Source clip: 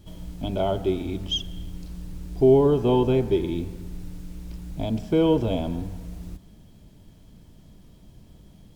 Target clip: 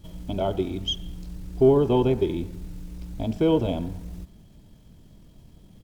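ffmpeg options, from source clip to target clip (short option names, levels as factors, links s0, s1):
-af "aeval=exprs='0.398*(cos(1*acos(clip(val(0)/0.398,-1,1)))-cos(1*PI/2))+0.00631*(cos(2*acos(clip(val(0)/0.398,-1,1)))-cos(2*PI/2))+0.00708*(cos(3*acos(clip(val(0)/0.398,-1,1)))-cos(3*PI/2))':c=same,atempo=1.5"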